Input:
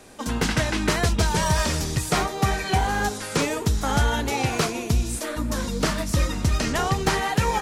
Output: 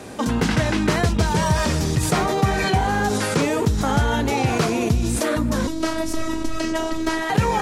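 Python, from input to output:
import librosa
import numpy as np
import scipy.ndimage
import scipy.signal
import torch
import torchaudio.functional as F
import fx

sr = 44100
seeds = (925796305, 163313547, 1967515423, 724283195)

p1 = scipy.signal.sosfilt(scipy.signal.butter(2, 92.0, 'highpass', fs=sr, output='sos'), x)
p2 = fx.tilt_eq(p1, sr, slope=-1.5)
p3 = fx.over_compress(p2, sr, threshold_db=-31.0, ratio=-1.0)
p4 = p2 + (p3 * 10.0 ** (0.0 / 20.0))
y = fx.robotise(p4, sr, hz=321.0, at=(5.67, 7.3))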